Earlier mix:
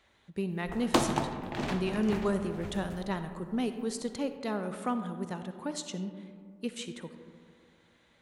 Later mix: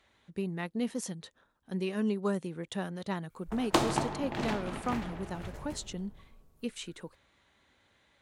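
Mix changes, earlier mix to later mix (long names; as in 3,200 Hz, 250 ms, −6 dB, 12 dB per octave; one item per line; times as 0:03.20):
speech: send off
background: entry +2.80 s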